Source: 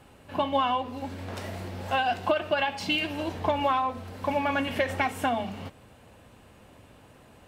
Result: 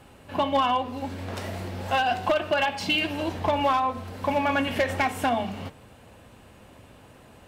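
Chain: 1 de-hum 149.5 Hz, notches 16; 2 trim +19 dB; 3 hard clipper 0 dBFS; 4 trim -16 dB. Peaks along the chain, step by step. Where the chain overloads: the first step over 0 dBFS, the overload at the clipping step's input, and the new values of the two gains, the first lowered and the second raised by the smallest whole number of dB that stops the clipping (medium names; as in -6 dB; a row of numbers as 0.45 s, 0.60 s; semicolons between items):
-12.0 dBFS, +7.0 dBFS, 0.0 dBFS, -16.0 dBFS; step 2, 7.0 dB; step 2 +12 dB, step 4 -9 dB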